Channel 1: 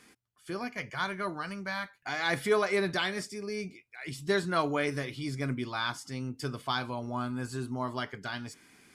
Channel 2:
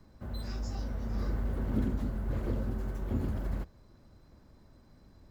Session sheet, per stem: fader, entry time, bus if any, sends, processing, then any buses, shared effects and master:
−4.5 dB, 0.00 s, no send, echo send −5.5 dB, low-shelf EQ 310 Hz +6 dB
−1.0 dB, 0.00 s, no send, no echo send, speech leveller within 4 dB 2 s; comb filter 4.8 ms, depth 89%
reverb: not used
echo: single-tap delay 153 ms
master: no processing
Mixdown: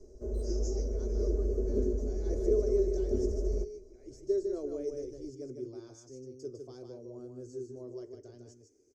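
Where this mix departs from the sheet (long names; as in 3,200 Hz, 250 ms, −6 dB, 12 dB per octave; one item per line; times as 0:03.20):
stem 1 −4.5 dB → −13.0 dB
master: extra drawn EQ curve 110 Hz 0 dB, 170 Hz −23 dB, 370 Hz +12 dB, 530 Hz +6 dB, 870 Hz −19 dB, 1,800 Hz −24 dB, 3,700 Hz −24 dB, 6,200 Hz +9 dB, 9,700 Hz −17 dB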